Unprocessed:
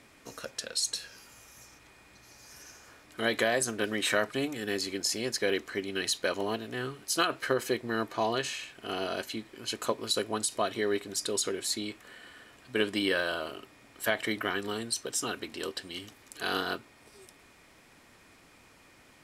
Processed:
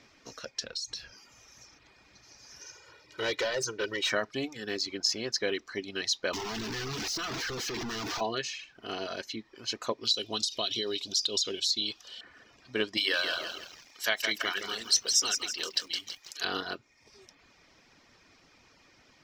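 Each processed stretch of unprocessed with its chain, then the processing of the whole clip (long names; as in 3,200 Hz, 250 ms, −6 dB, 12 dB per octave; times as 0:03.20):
0:00.62–0:01.15: low-shelf EQ 140 Hz +11.5 dB + downward compressor, threshold −33 dBFS
0:02.61–0:04.10: high-pass filter 88 Hz + comb filter 2.1 ms, depth 84% + hard clipping −24 dBFS
0:06.33–0:08.21: sign of each sample alone + parametric band 570 Hz −12.5 dB 0.22 octaves
0:10.05–0:12.21: high shelf with overshoot 2,500 Hz +9.5 dB, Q 3 + downward compressor 5 to 1, threshold −25 dBFS
0:12.97–0:16.45: spectral tilt +3.5 dB per octave + mains-hum notches 60/120/180/240/300 Hz + feedback echo at a low word length 164 ms, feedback 55%, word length 7 bits, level −5 dB
whole clip: reverb reduction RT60 0.66 s; high shelf with overshoot 7,300 Hz −10 dB, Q 3; level −2 dB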